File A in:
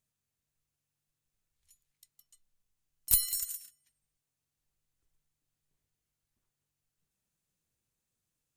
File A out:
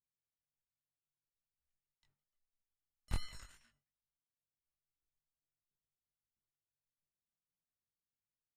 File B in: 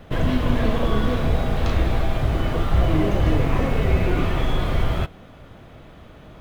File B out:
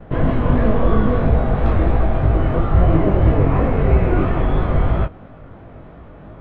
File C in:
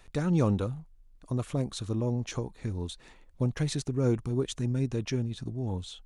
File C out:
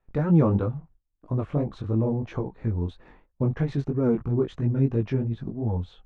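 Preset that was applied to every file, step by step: gate with hold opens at -44 dBFS; low-pass 1.5 kHz 12 dB/octave; chorus 3 Hz, delay 17.5 ms, depth 4.8 ms; trim +8 dB

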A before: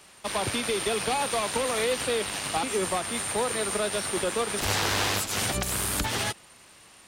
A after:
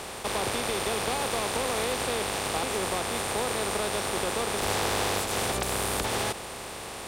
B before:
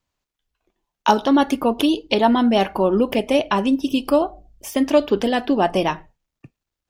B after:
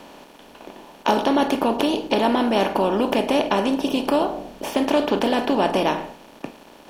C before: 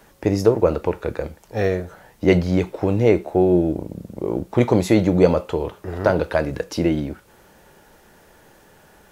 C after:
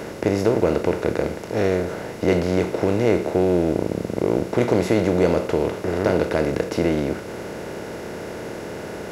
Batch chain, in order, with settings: spectral levelling over time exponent 0.4; trim -7.5 dB

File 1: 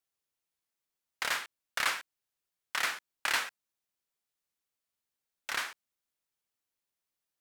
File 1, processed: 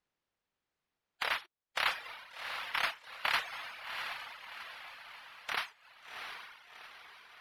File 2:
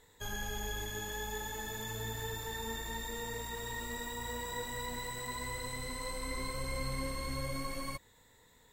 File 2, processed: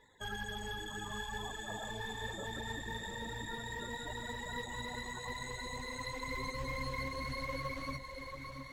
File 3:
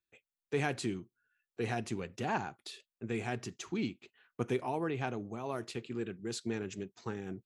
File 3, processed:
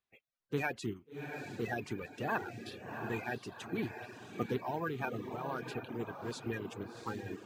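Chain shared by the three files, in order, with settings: coarse spectral quantiser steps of 30 dB; tilt shelf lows -4.5 dB; echo that smears into a reverb 728 ms, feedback 51%, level -6 dB; reverb removal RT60 0.57 s; careless resampling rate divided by 3×, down none, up zero stuff; tape spacing loss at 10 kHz 26 dB; trim +3 dB

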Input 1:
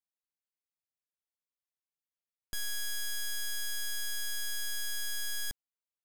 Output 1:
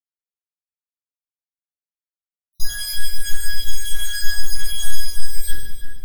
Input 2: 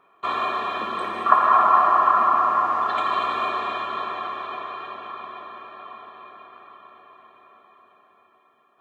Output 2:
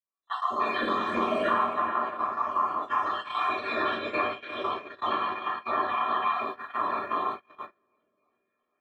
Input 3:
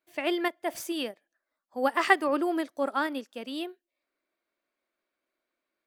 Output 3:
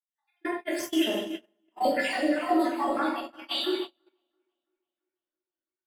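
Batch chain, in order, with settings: random holes in the spectrogram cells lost 69%; recorder AGC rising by 27 dB/s; on a send: two-band feedback delay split 2.7 kHz, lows 335 ms, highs 151 ms, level -8.5 dB; on the sum: simulated room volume 190 m³, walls mixed, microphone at 2.7 m; gate -14 dBFS, range -34 dB; trim -17 dB

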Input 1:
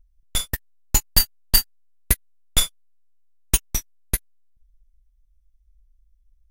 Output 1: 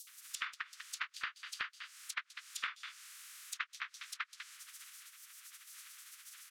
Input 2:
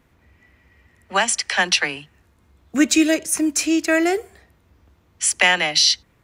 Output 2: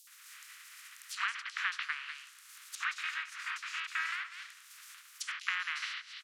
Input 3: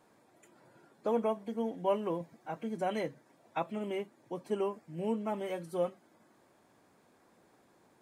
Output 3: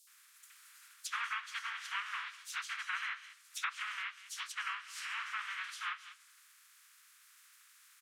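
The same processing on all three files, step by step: spectral contrast reduction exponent 0.3; steep high-pass 1.2 kHz 48 dB/octave; on a send: delay 195 ms -20.5 dB; on the sum: compression 5:1, threshold -32 dBFS; bands offset in time highs, lows 70 ms, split 4.1 kHz; low-pass that closes with the level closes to 2 kHz, closed at -36 dBFS; trim +5.5 dB

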